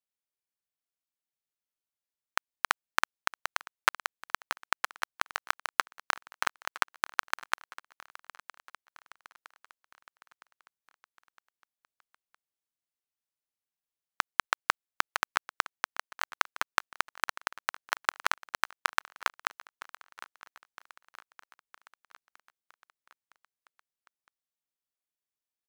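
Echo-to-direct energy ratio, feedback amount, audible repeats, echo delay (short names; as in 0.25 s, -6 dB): -18.0 dB, 56%, 4, 0.962 s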